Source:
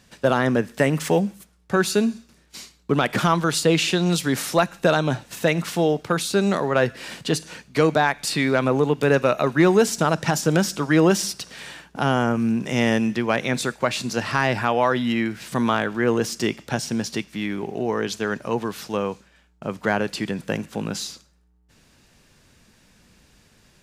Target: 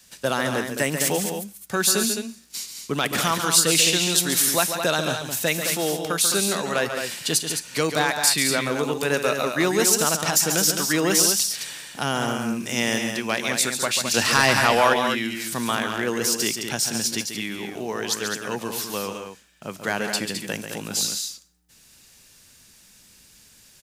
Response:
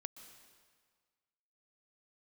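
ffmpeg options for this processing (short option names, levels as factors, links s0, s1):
-filter_complex "[0:a]adynamicequalizer=threshold=0.0112:dfrequency=130:dqfactor=1.8:tfrequency=130:tqfactor=1.8:attack=5:release=100:ratio=0.375:range=2.5:mode=cutabove:tftype=bell,asettb=1/sr,asplit=3[s0][s1][s2];[s0]atrim=end=14.144[s3];[s1]atrim=start=14.14:end=14.94,asetpts=PTS-STARTPTS,afade=t=in:d=0.004:c=qsin,afade=t=out:st=0.796:d=0.004:c=qsin,acontrast=85[s4];[s2]atrim=start=14.936[s5];[s3][s4]acrossfade=d=0.004:c1=hsin:c2=qsin[s6];[s6][s5]acrossfade=d=0.004:c1=qsin:c2=hsin,crystalizer=i=5.5:c=0,asplit=2[s7][s8];[s8]aecho=0:1:139.9|212.8:0.398|0.447[s9];[s7][s9]amix=inputs=2:normalize=0,volume=0.473"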